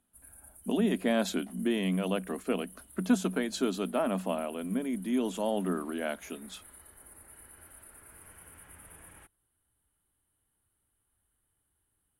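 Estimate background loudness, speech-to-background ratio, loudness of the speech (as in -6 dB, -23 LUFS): -51.5 LUFS, 20.0 dB, -31.5 LUFS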